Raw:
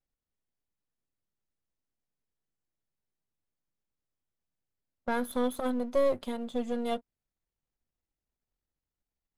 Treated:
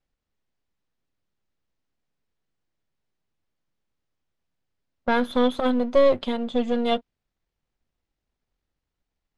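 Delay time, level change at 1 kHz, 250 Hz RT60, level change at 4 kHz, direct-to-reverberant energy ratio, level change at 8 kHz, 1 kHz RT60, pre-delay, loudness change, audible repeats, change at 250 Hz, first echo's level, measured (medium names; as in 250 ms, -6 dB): no echo, +8.5 dB, no reverb, +12.5 dB, no reverb, no reading, no reverb, no reverb, +8.5 dB, no echo, +8.5 dB, no echo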